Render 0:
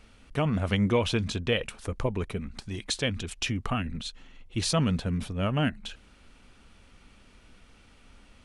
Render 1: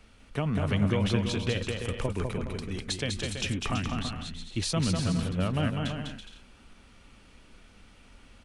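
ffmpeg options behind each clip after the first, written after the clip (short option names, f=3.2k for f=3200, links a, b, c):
-filter_complex "[0:a]acrossover=split=180[a][b];[b]acompressor=threshold=-27dB:ratio=6[c];[a][c]amix=inputs=2:normalize=0,asplit=2[d][e];[e]aecho=0:1:200|330|414.5|469.4|505.1:0.631|0.398|0.251|0.158|0.1[f];[d][f]amix=inputs=2:normalize=0,volume=-1dB"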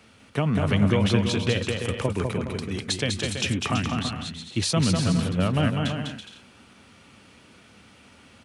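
-af "highpass=f=87:w=0.5412,highpass=f=87:w=1.3066,volume=5.5dB"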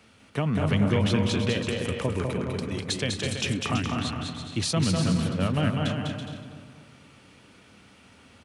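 -filter_complex "[0:a]asplit=2[a][b];[b]asoftclip=type=hard:threshold=-17.5dB,volume=-11dB[c];[a][c]amix=inputs=2:normalize=0,asplit=2[d][e];[e]adelay=238,lowpass=f=1.7k:p=1,volume=-6dB,asplit=2[f][g];[g]adelay=238,lowpass=f=1.7k:p=1,volume=0.47,asplit=2[h][i];[i]adelay=238,lowpass=f=1.7k:p=1,volume=0.47,asplit=2[j][k];[k]adelay=238,lowpass=f=1.7k:p=1,volume=0.47,asplit=2[l][m];[m]adelay=238,lowpass=f=1.7k:p=1,volume=0.47,asplit=2[n][o];[o]adelay=238,lowpass=f=1.7k:p=1,volume=0.47[p];[d][f][h][j][l][n][p]amix=inputs=7:normalize=0,volume=-4.5dB"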